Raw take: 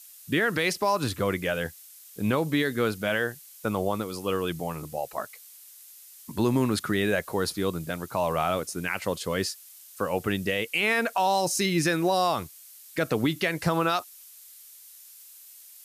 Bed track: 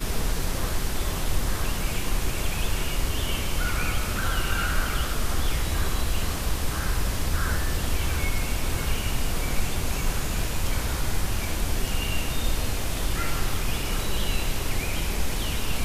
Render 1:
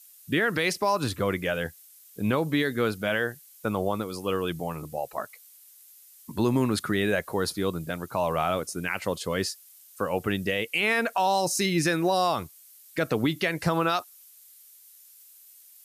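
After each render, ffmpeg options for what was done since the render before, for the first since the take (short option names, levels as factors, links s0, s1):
-af "afftdn=nr=6:nf=-50"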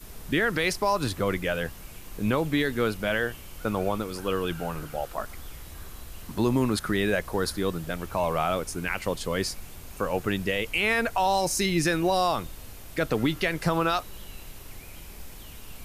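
-filter_complex "[1:a]volume=0.141[s0];[0:a][s0]amix=inputs=2:normalize=0"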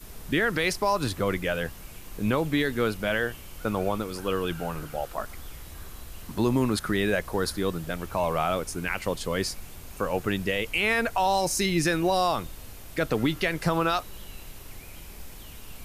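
-af anull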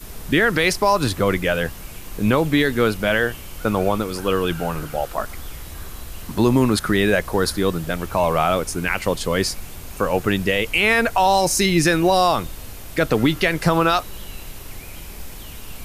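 -af "volume=2.37"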